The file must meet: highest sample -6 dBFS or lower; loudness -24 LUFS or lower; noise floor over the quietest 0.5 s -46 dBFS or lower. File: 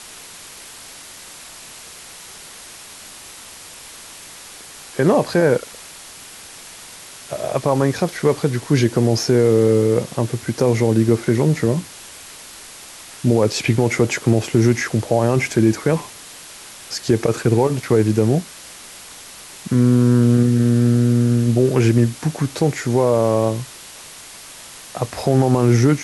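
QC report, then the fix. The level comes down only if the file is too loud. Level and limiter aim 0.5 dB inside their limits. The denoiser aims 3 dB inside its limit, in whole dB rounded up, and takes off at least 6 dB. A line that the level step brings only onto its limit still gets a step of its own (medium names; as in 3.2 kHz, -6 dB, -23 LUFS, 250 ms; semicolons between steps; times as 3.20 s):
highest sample -5.0 dBFS: fail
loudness -17.5 LUFS: fail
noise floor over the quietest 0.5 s -39 dBFS: fail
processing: noise reduction 6 dB, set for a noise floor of -39 dBFS; trim -7 dB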